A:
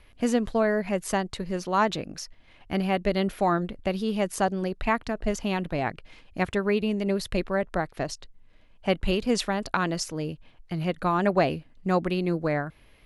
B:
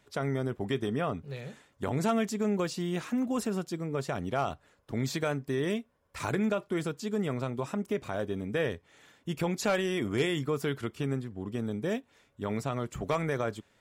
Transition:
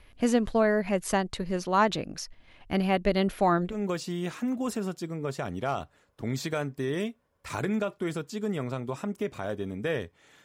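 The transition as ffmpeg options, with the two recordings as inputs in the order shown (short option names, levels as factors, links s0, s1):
-filter_complex "[0:a]apad=whole_dur=10.44,atrim=end=10.44,atrim=end=3.86,asetpts=PTS-STARTPTS[s0];[1:a]atrim=start=2.34:end=9.14,asetpts=PTS-STARTPTS[s1];[s0][s1]acrossfade=d=0.22:c1=tri:c2=tri"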